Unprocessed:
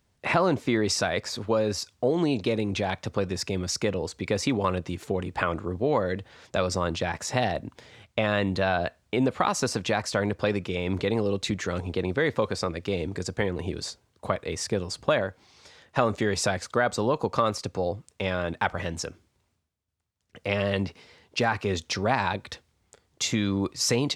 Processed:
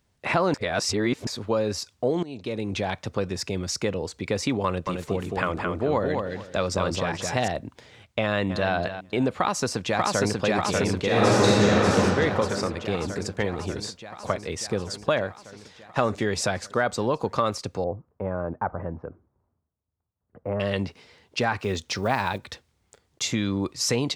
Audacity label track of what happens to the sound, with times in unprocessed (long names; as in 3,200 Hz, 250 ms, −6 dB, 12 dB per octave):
0.540000	1.270000	reverse
2.230000	2.760000	fade in linear, from −19 dB
4.650000	7.480000	repeating echo 217 ms, feedback 22%, level −4 dB
8.220000	8.730000	delay throw 270 ms, feedback 25%, level −10.5 dB
9.310000	10.340000	delay throw 590 ms, feedback 75%, level −1 dB
11.050000	11.970000	thrown reverb, RT60 2.7 s, DRR −6 dB
17.840000	20.600000	low-pass filter 1,200 Hz 24 dB per octave
21.590000	23.230000	one scale factor per block 7 bits